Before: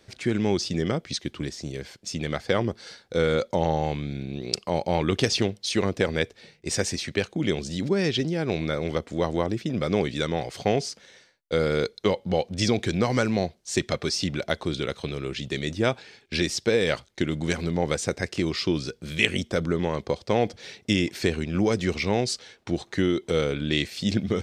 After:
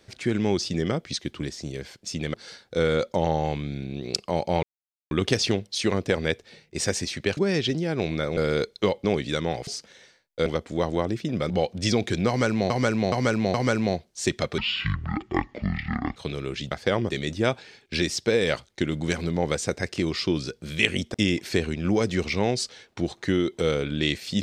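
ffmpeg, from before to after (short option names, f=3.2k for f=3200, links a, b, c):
-filter_complex "[0:a]asplit=17[a][b][c][d][e][f][g][h][i][j][k][l][m][n][o][p][q];[a]atrim=end=2.342[r];[b]atrim=start=2.728:end=5.02,asetpts=PTS-STARTPTS,afade=t=out:st=2.288:d=0.004:c=hsin,apad=pad_dur=0.48[s];[c]atrim=start=5.02:end=7.282,asetpts=PTS-STARTPTS,afade=t=in:d=0.004:c=hsin[t];[d]atrim=start=7.868:end=8.872[u];[e]atrim=start=11.588:end=12.262[v];[f]atrim=start=9.908:end=10.542[w];[g]atrim=start=10.798:end=11.592[x];[h]atrim=start=8.868:end=9.912[y];[i]atrim=start=12.258:end=13.462[z];[j]atrim=start=13.038:end=13.462[aa];[k]atrim=start=13.038:end=13.462[ab];[l]atrim=start=13.038:end=14.084[ac];[m]atrim=start=14.08:end=14.95,asetpts=PTS-STARTPTS,asetrate=24255,aresample=44100,atrim=end_sample=69758,asetpts=PTS-STARTPTS[ad];[n]atrim=start=14.946:end=15.502[ae];[o]atrim=start=2.338:end=2.732[af];[p]atrim=start=15.498:end=19.542[ag];[q]atrim=start=20.838[ah];[s][t]concat=n=2:v=0:a=1[ai];[r][ai]acrossfade=d=0.004:c1=hsin:c2=hsin[aj];[aj][u]acrossfade=d=0.004:c1=hsin:c2=hsin[ak];[ak][v]acrossfade=d=0.004:c1=hsin:c2=hsin[al];[al][w]acrossfade=d=0.004:c1=hsin:c2=hsin[am];[am][x]acrossfade=d=0.004:c1=hsin:c2=hsin[an];[an][y]acrossfade=d=0.004:c1=hsin:c2=hsin[ao];[ao][z]acrossfade=d=0.004:c1=hsin:c2=hsin[ap];[ap][aa]acrossfade=d=0.004:c1=hsin:c2=hsin[aq];[aq][ab]acrossfade=d=0.004:c1=hsin:c2=hsin[ar];[ar][ac]acrossfade=d=0.004:c1=hsin:c2=hsin[as];[as][ad]acrossfade=d=0.004:c1=hsin:c2=hsin[at];[at][ae]acrossfade=d=0.004:c1=hsin:c2=hsin[au];[au][af]acrossfade=d=0.004:c1=hsin:c2=hsin[av];[av][ag]acrossfade=d=0.004:c1=hsin:c2=hsin[aw];[aw][ah]acrossfade=d=0.004:c1=hsin:c2=hsin"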